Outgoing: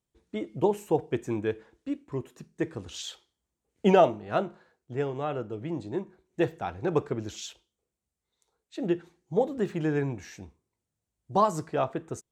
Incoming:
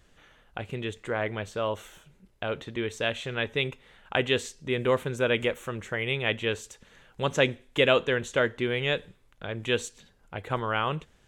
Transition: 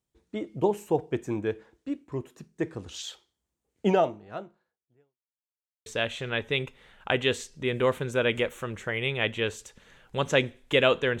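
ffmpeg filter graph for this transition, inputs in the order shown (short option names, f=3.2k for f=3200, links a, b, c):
-filter_complex "[0:a]apad=whole_dur=11.2,atrim=end=11.2,asplit=2[a][b];[a]atrim=end=5.19,asetpts=PTS-STARTPTS,afade=t=out:st=3.71:d=1.48:c=qua[c];[b]atrim=start=5.19:end=5.86,asetpts=PTS-STARTPTS,volume=0[d];[1:a]atrim=start=2.91:end=8.25,asetpts=PTS-STARTPTS,afade=t=in:d=0.004:c=hsin[e];[c][d][e]concat=n=3:v=0:a=1"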